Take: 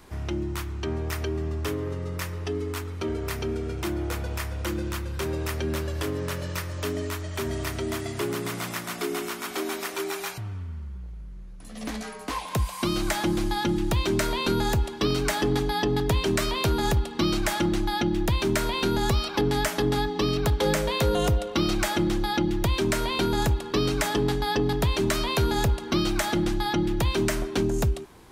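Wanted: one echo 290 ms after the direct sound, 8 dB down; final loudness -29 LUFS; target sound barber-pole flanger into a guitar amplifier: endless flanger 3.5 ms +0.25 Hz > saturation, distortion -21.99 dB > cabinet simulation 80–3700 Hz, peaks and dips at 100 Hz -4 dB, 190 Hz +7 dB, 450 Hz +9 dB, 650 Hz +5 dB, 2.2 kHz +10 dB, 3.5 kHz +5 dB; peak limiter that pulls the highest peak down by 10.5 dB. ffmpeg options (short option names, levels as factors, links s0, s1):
-filter_complex "[0:a]alimiter=level_in=1.19:limit=0.0631:level=0:latency=1,volume=0.841,aecho=1:1:290:0.398,asplit=2[s0][s1];[s1]adelay=3.5,afreqshift=0.25[s2];[s0][s2]amix=inputs=2:normalize=1,asoftclip=threshold=0.0473,highpass=80,equalizer=f=100:t=q:w=4:g=-4,equalizer=f=190:t=q:w=4:g=7,equalizer=f=450:t=q:w=4:g=9,equalizer=f=650:t=q:w=4:g=5,equalizer=f=2200:t=q:w=4:g=10,equalizer=f=3500:t=q:w=4:g=5,lowpass=f=3700:w=0.5412,lowpass=f=3700:w=1.3066,volume=2"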